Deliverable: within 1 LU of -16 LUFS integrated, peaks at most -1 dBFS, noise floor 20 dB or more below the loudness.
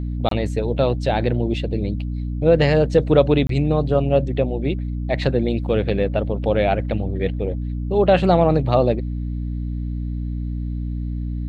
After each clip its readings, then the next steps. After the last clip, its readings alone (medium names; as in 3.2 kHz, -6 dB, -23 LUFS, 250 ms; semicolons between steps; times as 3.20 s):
dropouts 2; longest dropout 23 ms; hum 60 Hz; highest harmonic 300 Hz; hum level -23 dBFS; loudness -20.5 LUFS; peak level -2.5 dBFS; loudness target -16.0 LUFS
-> interpolate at 0.29/3.47 s, 23 ms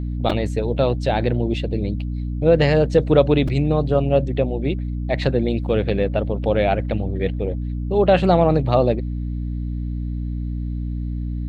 dropouts 0; hum 60 Hz; highest harmonic 300 Hz; hum level -23 dBFS
-> hum notches 60/120/180/240/300 Hz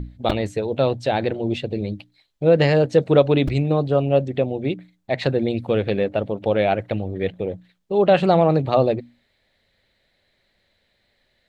hum not found; loudness -20.5 LUFS; peak level -2.5 dBFS; loudness target -16.0 LUFS
-> trim +4.5 dB; peak limiter -1 dBFS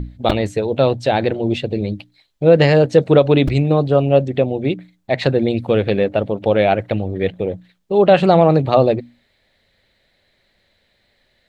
loudness -16.5 LUFS; peak level -1.0 dBFS; noise floor -63 dBFS